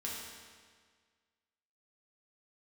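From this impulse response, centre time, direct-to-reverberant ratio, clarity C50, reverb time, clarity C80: 95 ms, -5.0 dB, -0.5 dB, 1.7 s, 1.5 dB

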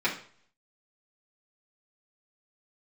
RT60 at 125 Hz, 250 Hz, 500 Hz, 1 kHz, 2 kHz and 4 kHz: 0.65 s, 0.50 s, 0.50 s, 0.50 s, 0.45 s, 0.45 s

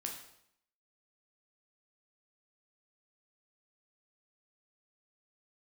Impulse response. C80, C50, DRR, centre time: 9.0 dB, 6.0 dB, 0.5 dB, 30 ms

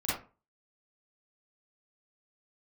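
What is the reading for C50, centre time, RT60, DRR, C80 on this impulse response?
-1.0 dB, 55 ms, 0.35 s, -10.0 dB, 8.5 dB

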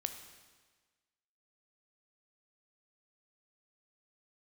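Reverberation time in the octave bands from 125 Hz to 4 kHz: 1.4 s, 1.4 s, 1.4 s, 1.4 s, 1.4 s, 1.4 s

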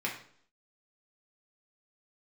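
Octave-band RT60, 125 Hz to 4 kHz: 0.55 s, 0.65 s, 0.60 s, 0.55 s, 0.50 s, 0.55 s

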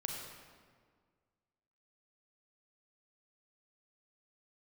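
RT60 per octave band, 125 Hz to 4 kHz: 2.0 s, 2.0 s, 1.9 s, 1.7 s, 1.4 s, 1.1 s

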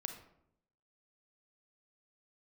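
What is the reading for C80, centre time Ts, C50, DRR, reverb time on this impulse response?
11.0 dB, 18 ms, 7.5 dB, 5.5 dB, 0.75 s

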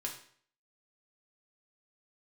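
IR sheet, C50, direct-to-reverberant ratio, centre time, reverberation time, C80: 7.5 dB, -0.5 dB, 22 ms, 0.55 s, 11.0 dB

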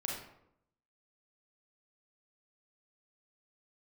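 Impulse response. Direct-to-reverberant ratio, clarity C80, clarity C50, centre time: -2.5 dB, 5.5 dB, 1.5 dB, 50 ms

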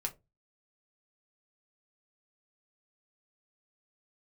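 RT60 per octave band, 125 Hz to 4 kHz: 0.45 s, 0.30 s, 0.25 s, 0.15 s, 0.15 s, 0.15 s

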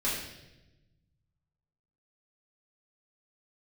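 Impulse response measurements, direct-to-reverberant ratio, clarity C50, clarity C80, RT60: -9.0 dB, 2.0 dB, 4.5 dB, 1.0 s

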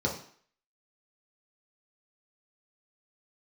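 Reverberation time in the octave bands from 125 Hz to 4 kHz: 0.40 s, 0.50 s, 0.50 s, 0.55 s, 0.55 s, 0.50 s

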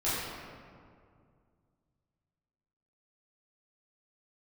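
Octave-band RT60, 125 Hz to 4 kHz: 3.0 s, 2.6 s, 2.3 s, 2.1 s, 1.6 s, 1.1 s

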